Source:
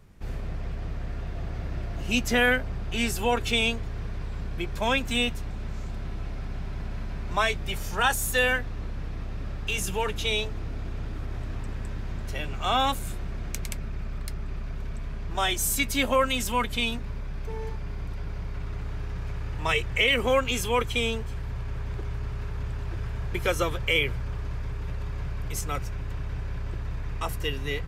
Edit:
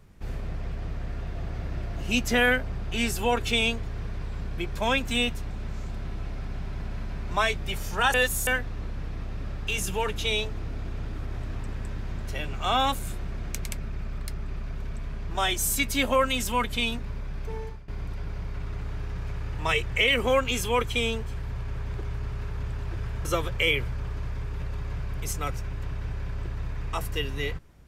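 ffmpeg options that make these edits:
ffmpeg -i in.wav -filter_complex "[0:a]asplit=5[link_01][link_02][link_03][link_04][link_05];[link_01]atrim=end=8.142[link_06];[link_02]atrim=start=8.138:end=8.472,asetpts=PTS-STARTPTS,areverse[link_07];[link_03]atrim=start=8.468:end=17.88,asetpts=PTS-STARTPTS,afade=type=out:start_time=9.092:duration=0.32:silence=0.105925[link_08];[link_04]atrim=start=17.88:end=23.252,asetpts=PTS-STARTPTS,afade=type=in:duration=0.004:curve=hsin:silence=0.105925[link_09];[link_05]atrim=start=23.528[link_10];[link_06][link_07]acrossfade=duration=0.004:curve1=hsin:curve2=hsin[link_11];[link_08][link_09]concat=n=2:v=0:a=1[link_12];[link_11][link_12]acrossfade=duration=0.004:curve1=hsin:curve2=hsin[link_13];[link_13][link_10]acrossfade=duration=0.004:curve1=hsin:curve2=hsin" out.wav

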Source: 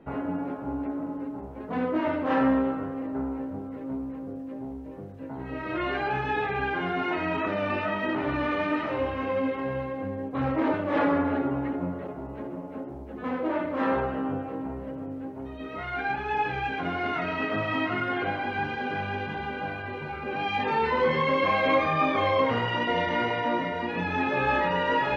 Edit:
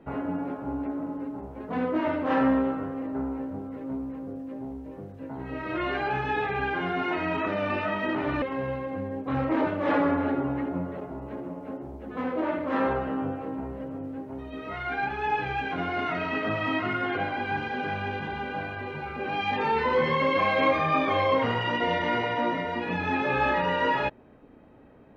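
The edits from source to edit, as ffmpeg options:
ffmpeg -i in.wav -filter_complex "[0:a]asplit=2[link_01][link_02];[link_01]atrim=end=8.422[link_03];[link_02]atrim=start=9.488[link_04];[link_03][link_04]acrossfade=duration=0.004:curve1=hsin:curve2=hsin" out.wav

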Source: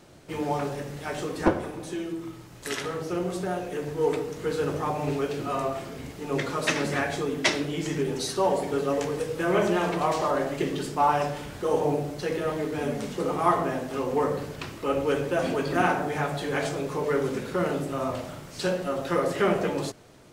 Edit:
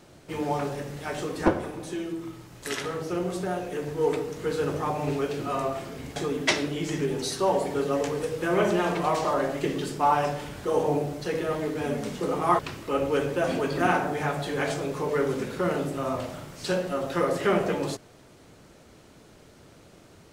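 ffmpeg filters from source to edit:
ffmpeg -i in.wav -filter_complex "[0:a]asplit=3[link_01][link_02][link_03];[link_01]atrim=end=6.162[link_04];[link_02]atrim=start=7.128:end=13.562[link_05];[link_03]atrim=start=14.538[link_06];[link_04][link_05]acrossfade=duration=0.004:curve1=hsin:curve2=hsin[link_07];[link_07][link_06]acrossfade=duration=0.004:curve1=hsin:curve2=hsin" out.wav

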